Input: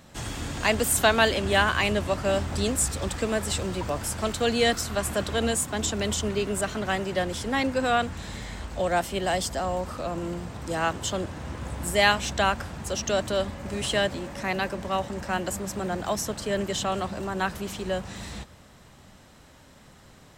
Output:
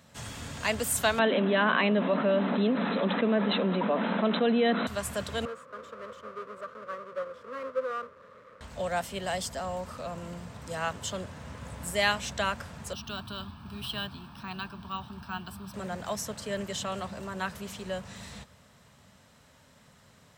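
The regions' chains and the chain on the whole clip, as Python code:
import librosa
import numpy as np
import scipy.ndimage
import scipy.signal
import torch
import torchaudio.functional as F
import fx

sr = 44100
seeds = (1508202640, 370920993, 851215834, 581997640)

y = fx.chain(x, sr, fx.brickwall_bandpass(low_hz=180.0, high_hz=4100.0),
    fx.tilt_eq(slope=-3.0),
    fx.env_flatten(amount_pct=70), at=(1.19, 4.87))
y = fx.chain(y, sr, fx.halfwave_hold(),
    fx.double_bandpass(hz=790.0, octaves=1.2), at=(5.45, 8.61))
y = fx.chain(y, sr, fx.fixed_phaser(hz=2000.0, stages=6),
    fx.resample_bad(factor=2, down='filtered', up='hold'), at=(12.93, 15.74))
y = scipy.signal.sosfilt(scipy.signal.butter(2, 79.0, 'highpass', fs=sr, output='sos'), y)
y = fx.peak_eq(y, sr, hz=330.0, db=-14.0, octaves=0.28)
y = fx.notch(y, sr, hz=780.0, q=12.0)
y = y * 10.0 ** (-5.0 / 20.0)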